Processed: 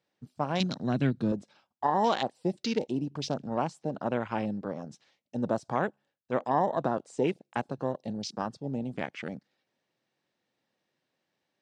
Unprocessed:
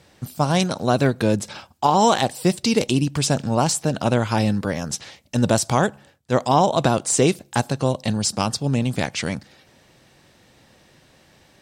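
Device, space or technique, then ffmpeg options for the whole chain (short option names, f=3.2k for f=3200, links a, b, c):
over-cleaned archive recording: -filter_complex "[0:a]highpass=190,lowpass=6k,afwtdn=0.0355,asettb=1/sr,asplit=3[a][b][c];[a]atrim=end=0.604[d];[b]atrim=start=0.6:end=1.32,asetpts=PTS-STARTPTS,afade=t=in:d=0.004:c=qsin,afade=t=out:st=0.716:d=0.004:c=qsin,equalizer=f=125:t=o:w=1:g=9,equalizer=f=250:t=o:w=1:g=5,equalizer=f=500:t=o:w=1:g=-7,equalizer=f=1k:t=o:w=1:g=-6,equalizer=f=4k:t=o:w=1:g=6,equalizer=f=8k:t=o:w=1:g=4[e];[c]atrim=start=1.316[f];[d][e]acrossfade=d=0.004:c1=hsin:c2=qsin[g];[g][f]acrossfade=d=0.004:c1=qsin:c2=hsin,volume=-9dB"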